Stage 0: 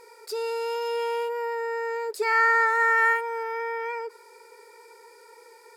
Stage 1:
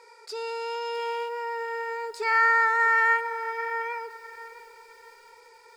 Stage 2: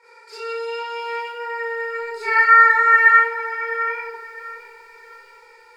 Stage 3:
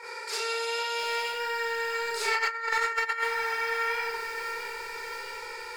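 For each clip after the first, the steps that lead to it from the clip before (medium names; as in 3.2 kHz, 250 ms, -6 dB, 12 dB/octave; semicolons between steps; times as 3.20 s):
three-band isolator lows -16 dB, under 460 Hz, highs -18 dB, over 7.9 kHz; bit-crushed delay 656 ms, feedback 35%, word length 8-bit, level -15 dB
peaking EQ 1.9 kHz +8.5 dB 1.4 oct; reverberation RT60 0.55 s, pre-delay 30 ms, DRR -9.5 dB; trim -12 dB
compressor with a negative ratio -17 dBFS, ratio -0.5; spectrum-flattening compressor 2:1; trim -7 dB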